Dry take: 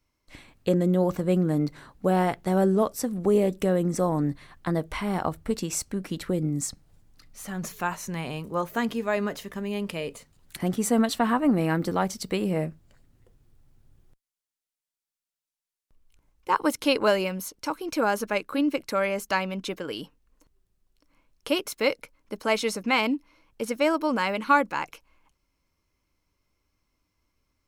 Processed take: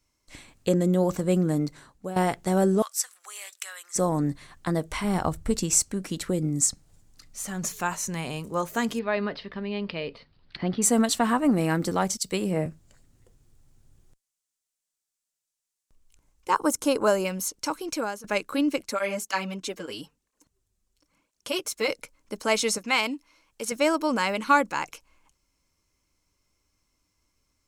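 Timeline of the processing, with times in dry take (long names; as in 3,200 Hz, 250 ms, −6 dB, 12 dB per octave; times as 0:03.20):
0:01.50–0:02.16: fade out, to −14 dB
0:02.82–0:03.96: high-pass filter 1,300 Hz 24 dB per octave
0:05.04–0:05.80: low-shelf EQ 110 Hz +11 dB
0:08.99–0:10.82: elliptic low-pass filter 4,600 Hz
0:12.17–0:12.66: multiband upward and downward expander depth 70%
0:16.55–0:17.25: flat-topped bell 3,000 Hz −9.5 dB
0:17.81–0:18.24: fade out, to −20 dB
0:18.82–0:21.89: through-zero flanger with one copy inverted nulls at 1 Hz, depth 7.9 ms
0:22.78–0:23.72: low-shelf EQ 480 Hz −8.5 dB
whole clip: parametric band 7,400 Hz +10 dB 1.1 octaves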